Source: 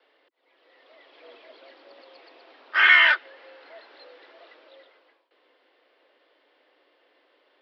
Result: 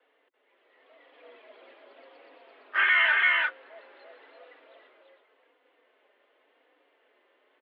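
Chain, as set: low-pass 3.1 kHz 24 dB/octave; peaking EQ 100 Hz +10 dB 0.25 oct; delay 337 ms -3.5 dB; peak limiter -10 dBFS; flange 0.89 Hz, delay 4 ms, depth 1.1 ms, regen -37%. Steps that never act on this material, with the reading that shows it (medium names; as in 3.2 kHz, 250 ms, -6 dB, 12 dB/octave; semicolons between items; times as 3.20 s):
peaking EQ 100 Hz: input has nothing below 320 Hz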